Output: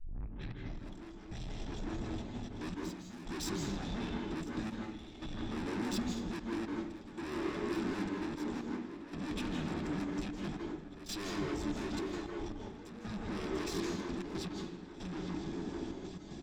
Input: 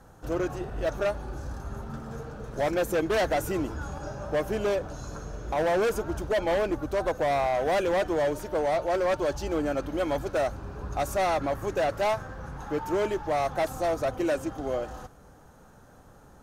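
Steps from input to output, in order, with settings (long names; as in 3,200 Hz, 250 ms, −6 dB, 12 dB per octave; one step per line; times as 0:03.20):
turntable start at the beginning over 0.85 s
high-shelf EQ 4,900 Hz +9.5 dB
in parallel at −3 dB: downward compressor 10 to 1, threshold −36 dBFS, peak gain reduction 13.5 dB
on the sum: brickwall limiter −21 dBFS, peak gain reduction 6.5 dB
pitch shifter −11 semitones
delay with a low-pass on its return 846 ms, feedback 42%, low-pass 2,800 Hz, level −7 dB
soft clipping −35.5 dBFS, distortion −6 dB
gate pattern "xx.x.x....xxxxx" 115 BPM −12 dB
convolution reverb RT60 0.65 s, pre-delay 151 ms, DRR 1 dB
level −2 dB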